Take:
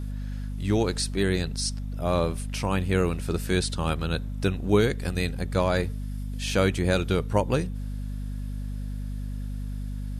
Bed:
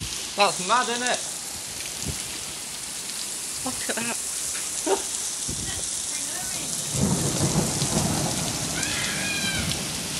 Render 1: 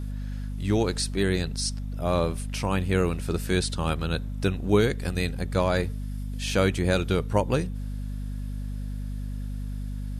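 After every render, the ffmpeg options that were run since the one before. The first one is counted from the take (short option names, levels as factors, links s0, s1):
-af anull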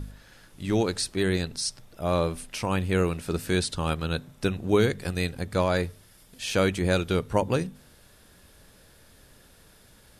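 -af "bandreject=f=50:t=h:w=4,bandreject=f=100:t=h:w=4,bandreject=f=150:t=h:w=4,bandreject=f=200:t=h:w=4,bandreject=f=250:t=h:w=4"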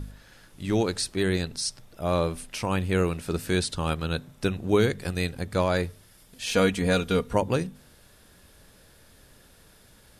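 -filter_complex "[0:a]asettb=1/sr,asplit=3[s0][s1][s2];[s0]atrim=end=6.464[s3];[s1]atrim=start=6.46:end=7.35,asetpts=PTS-STARTPTS,afade=t=in:d=0.004:c=qsin,afade=t=out:st=0.886:d=0.004:c=qsin,aecho=1:1:4.2:0.65,atrim=end_sample=39249[s4];[s2]atrim=start=7.346[s5];[s3][s4]acrossfade=d=0.004:c1=hsin:c2=qsin[s6];[s6][s5]acrossfade=d=0.004:c1=qsin:c2=hsin"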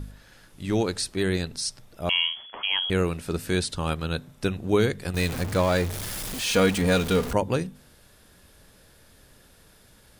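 -filter_complex "[0:a]asettb=1/sr,asplit=3[s0][s1][s2];[s0]atrim=end=2.094[s3];[s1]atrim=start=2.09:end=2.9,asetpts=PTS-STARTPTS,afade=t=in:d=0.004:c=qsin,afade=t=out:st=0.806:d=0.004:c=qsin,lowpass=f=2900:t=q:w=0.5098,lowpass=f=2900:t=q:w=0.6013,lowpass=f=2900:t=q:w=0.9,lowpass=f=2900:t=q:w=2.563,afreqshift=-3400[s4];[s2]atrim=start=2.896[s5];[s3][s4]acrossfade=d=0.004:c1=hsin:c2=qsin[s6];[s6][s5]acrossfade=d=0.004:c1=qsin:c2=hsin,asettb=1/sr,asplit=3[s7][s8][s9];[s7]atrim=end=5.144[s10];[s8]atrim=start=5.14:end=7.33,asetpts=PTS-STARTPTS,afade=t=in:d=0.004:c=qsin,afade=t=out:st=2.186:d=0.004:c=qsin,aeval=exprs='val(0)+0.5*0.0422*sgn(val(0))':c=same[s11];[s9]atrim=start=7.326[s12];[s10][s11]acrossfade=d=0.004:c1=hsin:c2=qsin[s13];[s13][s12]acrossfade=d=0.004:c1=qsin:c2=hsin"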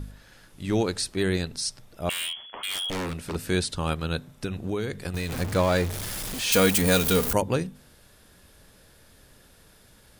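-filter_complex "[0:a]asplit=3[s0][s1][s2];[s0]afade=t=out:st=2.09:d=0.02[s3];[s1]aeval=exprs='0.0562*(abs(mod(val(0)/0.0562+3,4)-2)-1)':c=same,afade=t=in:st=2.09:d=0.02,afade=t=out:st=3.34:d=0.02[s4];[s2]afade=t=in:st=3.34:d=0.02[s5];[s3][s4][s5]amix=inputs=3:normalize=0,asettb=1/sr,asplit=3[s6][s7][s8];[s6]atrim=end=4.314[s9];[s7]atrim=start=4.31:end=5.32,asetpts=PTS-STARTPTS,afade=t=in:d=0.004:c=qsin,afade=t=out:st=1.006:d=0.004:c=qsin,acompressor=threshold=0.0562:ratio=5:attack=3.2:release=140:knee=1:detection=peak[s10];[s8]atrim=start=5.316[s11];[s9][s10]acrossfade=d=0.004:c1=hsin:c2=qsin[s12];[s12][s11]acrossfade=d=0.004:c1=qsin:c2=hsin,asettb=1/sr,asplit=3[s13][s14][s15];[s13]atrim=end=6.524[s16];[s14]atrim=start=6.52:end=7.42,asetpts=PTS-STARTPTS,afade=t=in:d=0.004:c=qsin,afade=t=out:st=0.896:d=0.004:c=qsin,aemphasis=mode=production:type=50fm[s17];[s15]atrim=start=7.416[s18];[s16][s17]acrossfade=d=0.004:c1=hsin:c2=qsin[s19];[s19][s18]acrossfade=d=0.004:c1=qsin:c2=hsin"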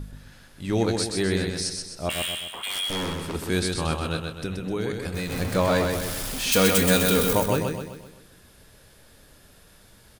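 -filter_complex "[0:a]asplit=2[s0][s1];[s1]adelay=26,volume=0.2[s2];[s0][s2]amix=inputs=2:normalize=0,asplit=2[s3][s4];[s4]aecho=0:1:128|256|384|512|640|768:0.596|0.28|0.132|0.0618|0.0291|0.0137[s5];[s3][s5]amix=inputs=2:normalize=0"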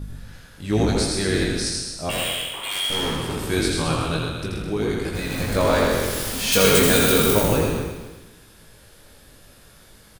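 -filter_complex "[0:a]asplit=2[s0][s1];[s1]adelay=19,volume=0.708[s2];[s0][s2]amix=inputs=2:normalize=0,asplit=7[s3][s4][s5][s6][s7][s8][s9];[s4]adelay=82,afreqshift=-43,volume=0.708[s10];[s5]adelay=164,afreqshift=-86,volume=0.331[s11];[s6]adelay=246,afreqshift=-129,volume=0.157[s12];[s7]adelay=328,afreqshift=-172,volume=0.0733[s13];[s8]adelay=410,afreqshift=-215,volume=0.0347[s14];[s9]adelay=492,afreqshift=-258,volume=0.0162[s15];[s3][s10][s11][s12][s13][s14][s15]amix=inputs=7:normalize=0"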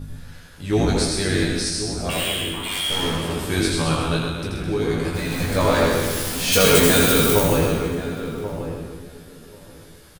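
-filter_complex "[0:a]asplit=2[s0][s1];[s1]adelay=12,volume=0.531[s2];[s0][s2]amix=inputs=2:normalize=0,asplit=2[s3][s4];[s4]adelay=1085,lowpass=f=1000:p=1,volume=0.335,asplit=2[s5][s6];[s6]adelay=1085,lowpass=f=1000:p=1,volume=0.17[s7];[s3][s5][s7]amix=inputs=3:normalize=0"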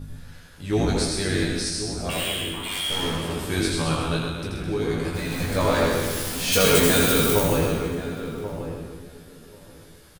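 -af "volume=0.708"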